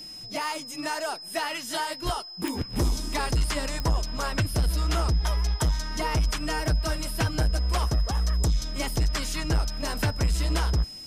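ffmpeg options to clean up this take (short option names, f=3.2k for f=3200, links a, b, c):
-af "adeclick=t=4,bandreject=f=5.1k:w=30"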